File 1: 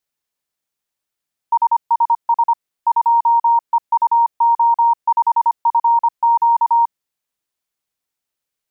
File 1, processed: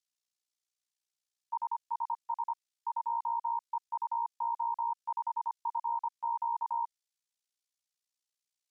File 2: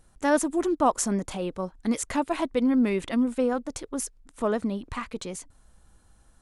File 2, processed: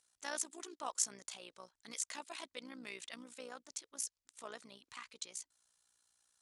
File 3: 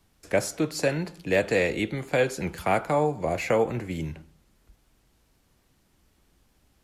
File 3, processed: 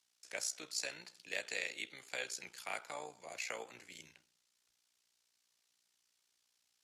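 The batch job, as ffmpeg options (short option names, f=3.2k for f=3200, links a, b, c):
-af "tremolo=f=60:d=0.75,bandpass=f=5.7k:t=q:w=0.99:csg=0"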